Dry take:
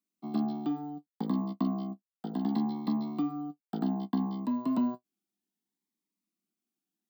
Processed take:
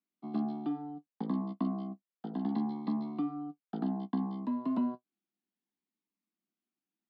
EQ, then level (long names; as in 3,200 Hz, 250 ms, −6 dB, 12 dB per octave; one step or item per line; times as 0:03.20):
high-pass filter 120 Hz
low-pass filter 3,200 Hz 12 dB per octave
−2.5 dB